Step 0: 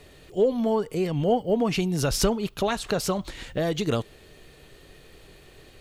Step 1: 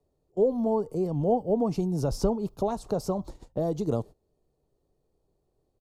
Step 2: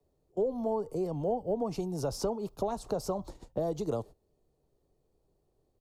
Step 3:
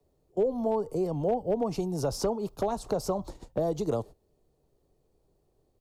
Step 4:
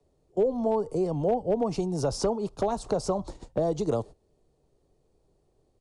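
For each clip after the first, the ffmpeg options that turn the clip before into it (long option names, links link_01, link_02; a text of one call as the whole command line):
ffmpeg -i in.wav -filter_complex "[0:a]agate=range=-20dB:threshold=-37dB:ratio=16:detection=peak,firequalizer=gain_entry='entry(890,0);entry(1700,-22);entry(3000,-22);entry(5000,-9)':delay=0.05:min_phase=1,acrossover=split=100|5800[link_01][link_02][link_03];[link_03]alimiter=level_in=11dB:limit=-24dB:level=0:latency=1:release=223,volume=-11dB[link_04];[link_01][link_02][link_04]amix=inputs=3:normalize=0,volume=-2dB" out.wav
ffmpeg -i in.wav -filter_complex "[0:a]acrossover=split=100|370[link_01][link_02][link_03];[link_01]acompressor=threshold=-46dB:ratio=4[link_04];[link_02]acompressor=threshold=-40dB:ratio=4[link_05];[link_03]acompressor=threshold=-29dB:ratio=4[link_06];[link_04][link_05][link_06]amix=inputs=3:normalize=0" out.wav
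ffmpeg -i in.wav -af "asoftclip=type=hard:threshold=-22dB,volume=3.5dB" out.wav
ffmpeg -i in.wav -af "aresample=22050,aresample=44100,volume=2dB" out.wav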